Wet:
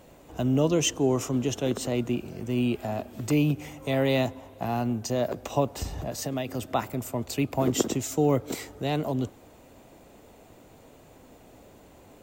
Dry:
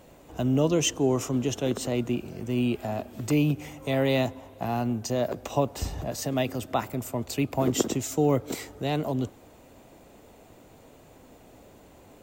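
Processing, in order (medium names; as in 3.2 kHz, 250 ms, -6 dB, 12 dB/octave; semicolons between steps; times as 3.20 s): 5.74–6.51 s: compression 5:1, threshold -27 dBFS, peak gain reduction 6 dB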